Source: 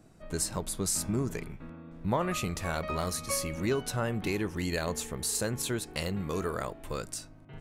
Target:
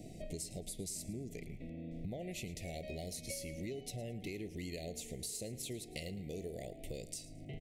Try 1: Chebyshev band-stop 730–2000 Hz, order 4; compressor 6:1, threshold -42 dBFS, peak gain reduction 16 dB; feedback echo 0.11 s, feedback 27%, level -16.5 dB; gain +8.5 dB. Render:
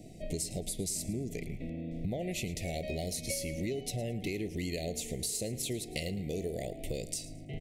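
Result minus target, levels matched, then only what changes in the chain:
compressor: peak gain reduction -7.5 dB
change: compressor 6:1, threshold -51 dBFS, peak gain reduction 23.5 dB

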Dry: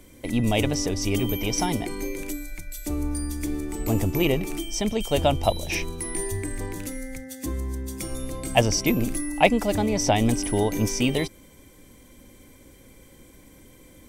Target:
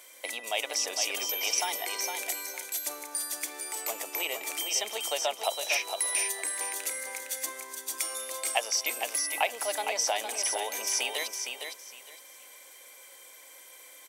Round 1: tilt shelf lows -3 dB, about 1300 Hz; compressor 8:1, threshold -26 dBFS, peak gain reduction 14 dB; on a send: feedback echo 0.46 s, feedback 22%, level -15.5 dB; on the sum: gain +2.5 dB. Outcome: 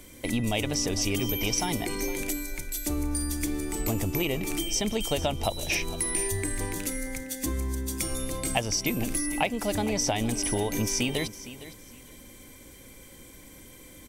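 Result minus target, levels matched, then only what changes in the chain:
echo-to-direct -9.5 dB; 500 Hz band +3.0 dB
add after compressor: HPF 570 Hz 24 dB/oct; change: feedback echo 0.46 s, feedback 22%, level -6 dB

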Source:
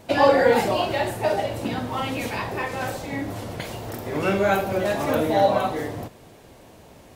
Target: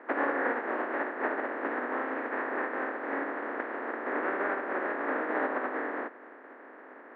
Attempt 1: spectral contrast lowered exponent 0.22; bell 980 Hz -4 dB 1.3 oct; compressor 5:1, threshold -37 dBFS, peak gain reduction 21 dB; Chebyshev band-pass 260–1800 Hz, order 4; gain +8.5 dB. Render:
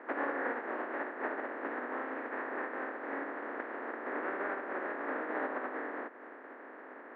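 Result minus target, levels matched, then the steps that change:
compressor: peak gain reduction +5.5 dB
change: compressor 5:1, threshold -30 dBFS, peak gain reduction 15.5 dB

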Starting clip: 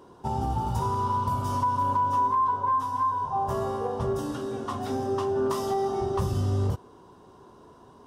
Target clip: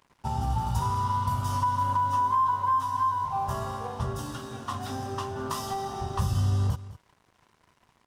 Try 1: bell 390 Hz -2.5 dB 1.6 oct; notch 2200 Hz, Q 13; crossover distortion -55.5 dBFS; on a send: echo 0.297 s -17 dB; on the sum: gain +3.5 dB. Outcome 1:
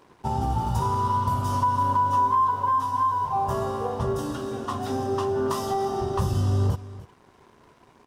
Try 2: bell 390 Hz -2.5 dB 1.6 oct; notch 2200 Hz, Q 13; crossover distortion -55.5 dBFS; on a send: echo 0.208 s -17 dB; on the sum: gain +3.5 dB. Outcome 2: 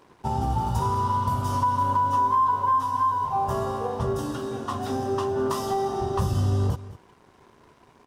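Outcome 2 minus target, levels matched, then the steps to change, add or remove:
500 Hz band +7.0 dB
change: bell 390 Hz -13.5 dB 1.6 oct

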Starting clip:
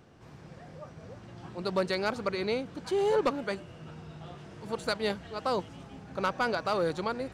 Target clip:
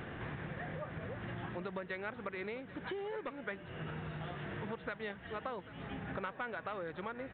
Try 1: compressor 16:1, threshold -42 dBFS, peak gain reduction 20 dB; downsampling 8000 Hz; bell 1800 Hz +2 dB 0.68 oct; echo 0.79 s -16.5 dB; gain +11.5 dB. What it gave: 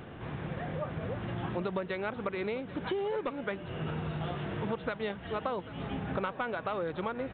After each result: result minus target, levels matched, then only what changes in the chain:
compressor: peak gain reduction -8.5 dB; 2000 Hz band -4.0 dB
change: compressor 16:1, threshold -51 dBFS, peak gain reduction 28.5 dB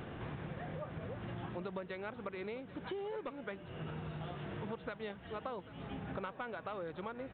2000 Hz band -4.0 dB
change: bell 1800 Hz +9.5 dB 0.68 oct

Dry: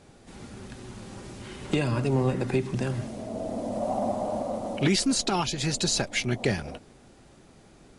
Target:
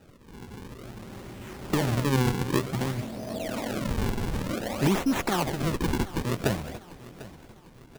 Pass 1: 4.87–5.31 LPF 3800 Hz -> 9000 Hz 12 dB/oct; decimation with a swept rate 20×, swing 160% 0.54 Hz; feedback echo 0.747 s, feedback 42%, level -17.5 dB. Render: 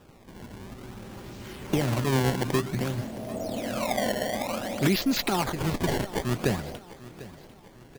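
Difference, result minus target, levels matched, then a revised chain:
decimation with a swept rate: distortion -5 dB
4.87–5.31 LPF 3800 Hz -> 9000 Hz 12 dB/oct; decimation with a swept rate 40×, swing 160% 0.54 Hz; feedback echo 0.747 s, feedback 42%, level -17.5 dB

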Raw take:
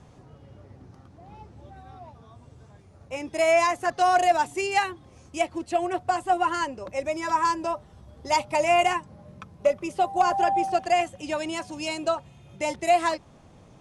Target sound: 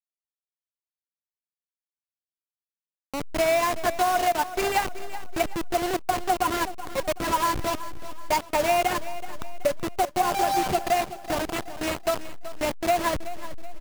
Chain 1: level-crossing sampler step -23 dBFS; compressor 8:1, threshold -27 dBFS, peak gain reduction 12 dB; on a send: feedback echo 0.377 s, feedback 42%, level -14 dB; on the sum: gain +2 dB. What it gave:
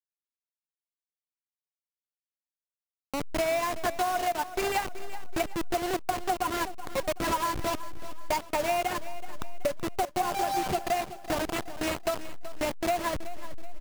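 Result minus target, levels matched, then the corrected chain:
compressor: peak gain reduction +5.5 dB
level-crossing sampler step -23 dBFS; compressor 8:1, threshold -20.5 dBFS, peak gain reduction 6 dB; on a send: feedback echo 0.377 s, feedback 42%, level -14 dB; on the sum: gain +2 dB

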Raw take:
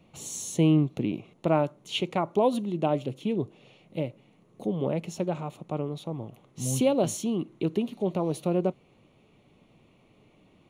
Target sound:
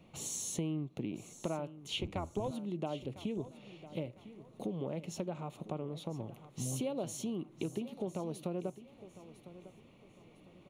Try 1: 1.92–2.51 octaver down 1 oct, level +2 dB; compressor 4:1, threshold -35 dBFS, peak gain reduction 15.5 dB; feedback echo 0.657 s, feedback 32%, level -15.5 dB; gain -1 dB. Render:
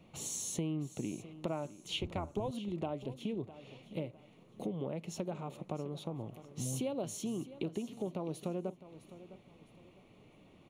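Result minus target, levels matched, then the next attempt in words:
echo 0.346 s early
1.92–2.51 octaver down 1 oct, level +2 dB; compressor 4:1, threshold -35 dBFS, peak gain reduction 15.5 dB; feedback echo 1.003 s, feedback 32%, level -15.5 dB; gain -1 dB

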